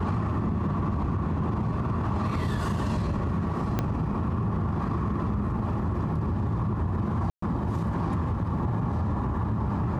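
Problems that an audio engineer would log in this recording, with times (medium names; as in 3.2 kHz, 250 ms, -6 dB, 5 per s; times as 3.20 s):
3.79 s: pop -13 dBFS
7.30–7.42 s: dropout 124 ms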